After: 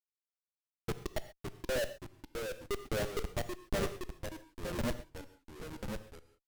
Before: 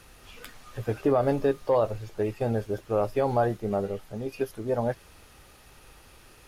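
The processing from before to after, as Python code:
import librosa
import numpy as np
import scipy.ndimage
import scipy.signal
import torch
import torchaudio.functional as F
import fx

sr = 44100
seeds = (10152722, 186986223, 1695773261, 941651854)

y = fx.bin_expand(x, sr, power=2.0)
y = scipy.signal.sosfilt(scipy.signal.butter(2, 77.0, 'highpass', fs=sr, output='sos'), y)
y = fx.env_lowpass_down(y, sr, base_hz=600.0, full_db=-22.0)
y = fx.ripple_eq(y, sr, per_octave=1.4, db=12)
y = fx.sample_hold(y, sr, seeds[0], rate_hz=7500.0, jitter_pct=0)
y = fx.filter_lfo_bandpass(y, sr, shape='square', hz=0.94, low_hz=400.0, high_hz=6400.0, q=2.3)
y = fx.schmitt(y, sr, flips_db=-35.5)
y = fx.rev_gated(y, sr, seeds[1], gate_ms=150, shape='flat', drr_db=11.5)
y = fx.echo_pitch(y, sr, ms=453, semitones=-2, count=3, db_per_echo=-6.0)
y = y * librosa.db_to_amplitude(10.0)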